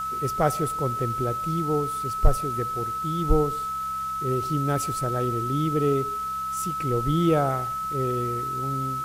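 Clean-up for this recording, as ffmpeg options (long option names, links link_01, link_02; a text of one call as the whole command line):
ffmpeg -i in.wav -af "bandreject=frequency=66:width_type=h:width=4,bandreject=frequency=132:width_type=h:width=4,bandreject=frequency=198:width_type=h:width=4,bandreject=frequency=1300:width=30,afwtdn=0.0045" out.wav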